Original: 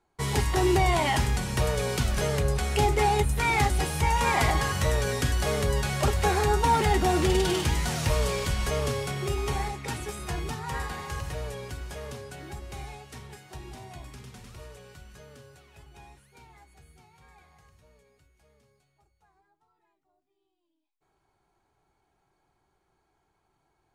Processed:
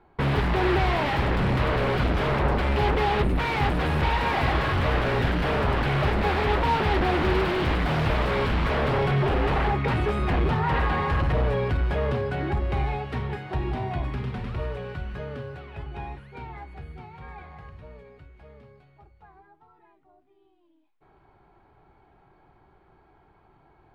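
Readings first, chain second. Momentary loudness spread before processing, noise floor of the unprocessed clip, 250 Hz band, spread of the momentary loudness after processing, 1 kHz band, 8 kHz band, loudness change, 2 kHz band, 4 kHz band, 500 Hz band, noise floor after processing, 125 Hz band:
20 LU, −75 dBFS, +4.5 dB, 15 LU, +2.0 dB, below −15 dB, +1.5 dB, +3.5 dB, −0.5 dB, +2.5 dB, −61 dBFS, +3.5 dB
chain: in parallel at −9.5 dB: sine wavefolder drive 20 dB, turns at −11 dBFS
on the sum: high-frequency loss of the air 430 metres

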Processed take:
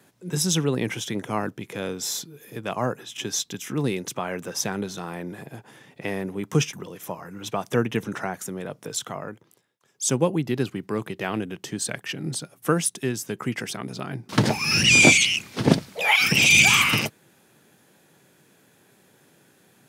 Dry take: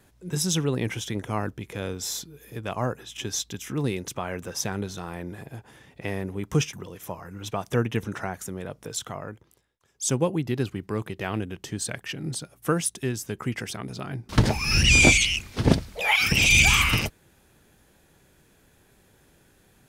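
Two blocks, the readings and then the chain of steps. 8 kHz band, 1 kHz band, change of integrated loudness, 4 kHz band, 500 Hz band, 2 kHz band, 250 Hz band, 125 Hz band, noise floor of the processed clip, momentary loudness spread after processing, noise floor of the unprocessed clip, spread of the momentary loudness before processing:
+2.5 dB, +2.5 dB, +2.0 dB, +2.5 dB, +2.5 dB, +2.5 dB, +2.5 dB, −1.5 dB, −60 dBFS, 19 LU, −61 dBFS, 19 LU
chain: high-pass filter 130 Hz 24 dB per octave
level +2.5 dB

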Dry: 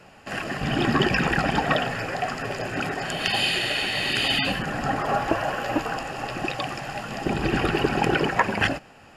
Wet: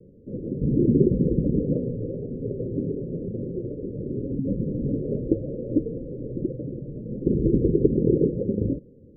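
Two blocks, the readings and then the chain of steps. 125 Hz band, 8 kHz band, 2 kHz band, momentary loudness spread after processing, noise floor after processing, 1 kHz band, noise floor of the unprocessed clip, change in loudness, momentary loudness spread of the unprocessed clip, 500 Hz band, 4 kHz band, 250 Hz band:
+4.5 dB, below −40 dB, below −40 dB, 12 LU, −50 dBFS, below −40 dB, −50 dBFS, −1.5 dB, 9 LU, +2.0 dB, below −40 dB, +4.5 dB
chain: Butterworth low-pass 520 Hz 96 dB per octave
level +4.5 dB

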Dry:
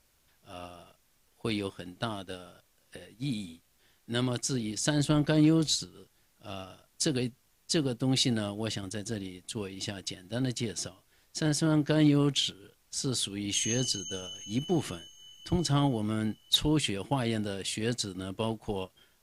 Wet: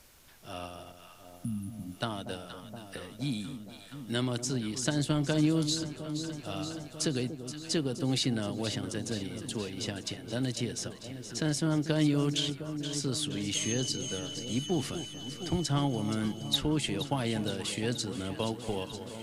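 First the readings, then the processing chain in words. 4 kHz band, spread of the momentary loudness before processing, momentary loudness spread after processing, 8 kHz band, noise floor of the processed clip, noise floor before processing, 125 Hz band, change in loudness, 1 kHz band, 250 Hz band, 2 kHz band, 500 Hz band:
−1.5 dB, 17 LU, 13 LU, −2.0 dB, −51 dBFS, −68 dBFS, −1.0 dB, −2.0 dB, −1.0 dB, −1.5 dB, −1.0 dB, −1.0 dB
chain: healed spectral selection 0:01.17–0:01.92, 290–9,600 Hz
delay that swaps between a low-pass and a high-pass 236 ms, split 910 Hz, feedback 82%, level −12 dB
multiband upward and downward compressor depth 40%
level −1.5 dB

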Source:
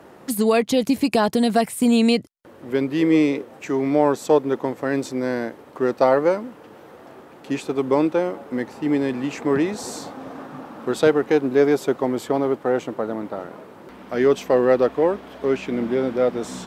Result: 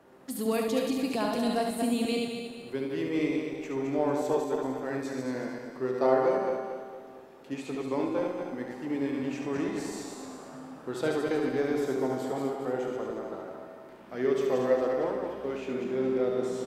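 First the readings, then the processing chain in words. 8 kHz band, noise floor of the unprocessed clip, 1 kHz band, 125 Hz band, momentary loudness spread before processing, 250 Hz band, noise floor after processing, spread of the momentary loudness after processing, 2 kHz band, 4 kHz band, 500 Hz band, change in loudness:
−9.0 dB, −46 dBFS, −8.5 dB, −9.0 dB, 12 LU, −9.5 dB, −48 dBFS, 14 LU, −9.0 dB, −9.0 dB, −8.5 dB, −9.5 dB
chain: feedback delay that plays each chunk backwards 114 ms, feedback 64%, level −4 dB
tuned comb filter 130 Hz, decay 1.5 s, mix 80%
on a send: single-tap delay 72 ms −6 dB

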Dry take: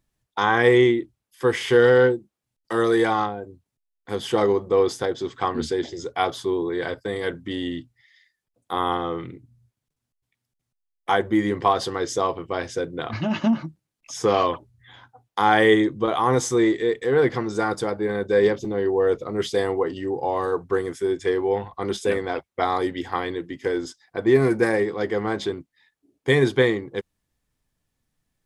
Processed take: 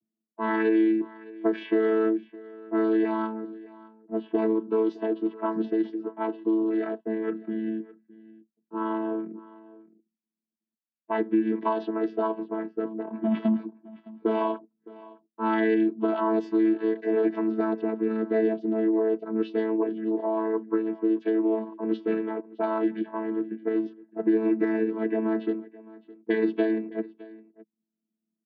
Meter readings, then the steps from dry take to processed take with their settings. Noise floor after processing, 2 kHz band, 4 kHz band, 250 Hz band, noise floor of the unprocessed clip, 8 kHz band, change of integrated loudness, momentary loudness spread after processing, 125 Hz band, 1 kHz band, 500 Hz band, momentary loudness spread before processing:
below −85 dBFS, −11.5 dB, below −15 dB, +0.5 dB, −83 dBFS, below −35 dB, −4.5 dB, 11 LU, below −10 dB, −8.5 dB, −6.0 dB, 12 LU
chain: channel vocoder with a chord as carrier bare fifth, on A3
low-pass that shuts in the quiet parts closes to 310 Hz, open at −18.5 dBFS
low-pass filter 3,900 Hz 24 dB per octave
downward compressor 3 to 1, threshold −21 dBFS, peak gain reduction 8 dB
single-tap delay 613 ms −20.5 dB

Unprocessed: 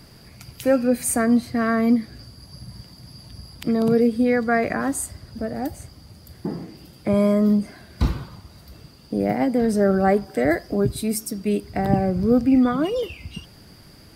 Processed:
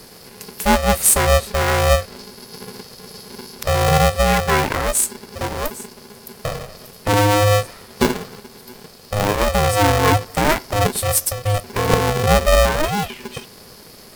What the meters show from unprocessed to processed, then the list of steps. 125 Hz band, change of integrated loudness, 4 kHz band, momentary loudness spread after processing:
+8.5 dB, +4.0 dB, +15.0 dB, 21 LU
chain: high-shelf EQ 6,600 Hz +11.5 dB
ring modulator with a square carrier 310 Hz
level +3 dB

